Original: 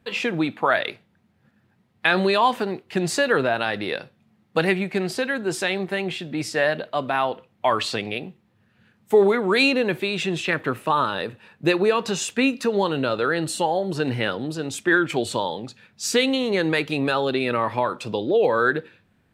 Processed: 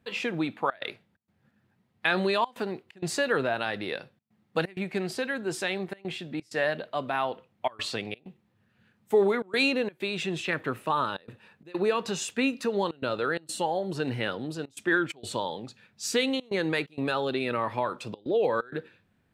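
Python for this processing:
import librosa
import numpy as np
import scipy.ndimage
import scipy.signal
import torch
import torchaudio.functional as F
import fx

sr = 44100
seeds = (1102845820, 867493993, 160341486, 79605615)

y = fx.step_gate(x, sr, bpm=129, pattern='xxxxxx.xxx.xxxx', floor_db=-24.0, edge_ms=4.5)
y = F.gain(torch.from_numpy(y), -6.0).numpy()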